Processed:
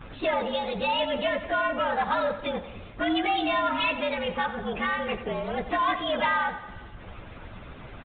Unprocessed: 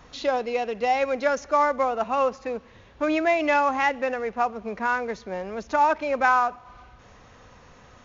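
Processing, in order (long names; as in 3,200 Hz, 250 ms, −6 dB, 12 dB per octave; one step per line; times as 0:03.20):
partials spread apart or drawn together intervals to 114%
low-shelf EQ 330 Hz +5.5 dB
hum removal 74.35 Hz, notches 34
in parallel at −1 dB: downward compressor, threshold −30 dBFS, peak gain reduction 12.5 dB
on the sum: harmonic and percussive parts rebalanced harmonic −13 dB
soft clipping −27 dBFS, distortion −16 dB
on a send: repeating echo 90 ms, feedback 55%, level −13 dB
on the sum: downsampling to 8,000 Hz
level +8.5 dB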